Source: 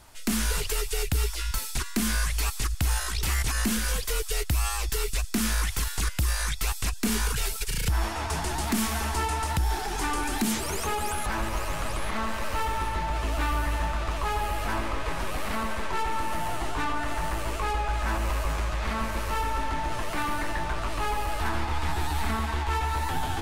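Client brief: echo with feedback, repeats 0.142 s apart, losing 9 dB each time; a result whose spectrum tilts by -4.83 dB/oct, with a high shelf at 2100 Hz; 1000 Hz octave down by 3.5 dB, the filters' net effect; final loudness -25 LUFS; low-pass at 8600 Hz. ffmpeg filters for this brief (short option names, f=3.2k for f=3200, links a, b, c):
-af "lowpass=8.6k,equalizer=f=1k:t=o:g=-3,highshelf=f=2.1k:g=-5.5,aecho=1:1:142|284|426|568:0.355|0.124|0.0435|0.0152,volume=5.5dB"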